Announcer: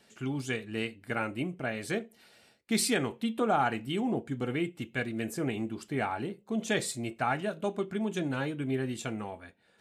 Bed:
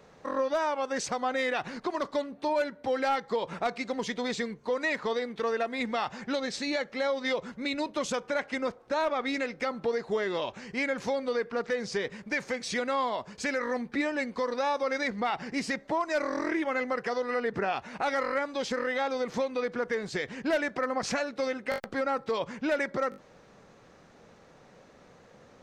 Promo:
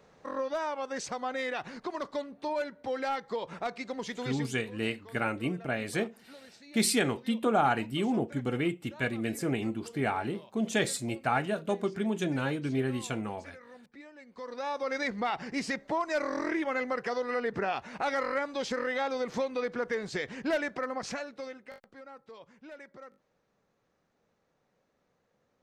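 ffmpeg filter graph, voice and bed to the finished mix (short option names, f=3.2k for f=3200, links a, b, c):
-filter_complex "[0:a]adelay=4050,volume=1.5dB[a];[1:a]volume=15dB,afade=t=out:st=4.2:d=0.45:silence=0.149624,afade=t=in:st=14.25:d=0.78:silence=0.105925,afade=t=out:st=20.46:d=1.35:silence=0.125893[b];[a][b]amix=inputs=2:normalize=0"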